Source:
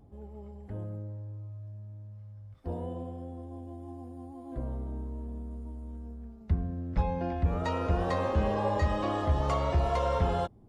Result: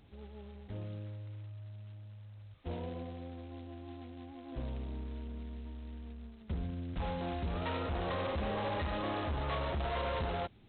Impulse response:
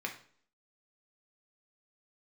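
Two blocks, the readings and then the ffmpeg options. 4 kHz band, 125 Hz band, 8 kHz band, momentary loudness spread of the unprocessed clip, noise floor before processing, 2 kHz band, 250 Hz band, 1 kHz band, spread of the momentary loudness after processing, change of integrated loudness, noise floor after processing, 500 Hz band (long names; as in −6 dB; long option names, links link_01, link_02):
+1.0 dB, −7.5 dB, can't be measured, 17 LU, −50 dBFS, −1.0 dB, −5.5 dB, −6.5 dB, 14 LU, −7.5 dB, −54 dBFS, −6.5 dB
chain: -af "asoftclip=type=hard:threshold=-28.5dB,volume=-4dB" -ar 8000 -c:a adpcm_g726 -b:a 16k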